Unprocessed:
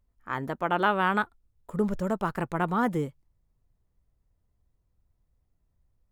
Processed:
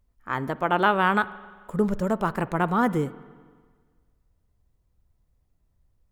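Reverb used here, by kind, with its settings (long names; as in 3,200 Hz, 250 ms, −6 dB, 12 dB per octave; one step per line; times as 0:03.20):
spring reverb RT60 1.6 s, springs 45/55 ms, chirp 30 ms, DRR 17 dB
level +3.5 dB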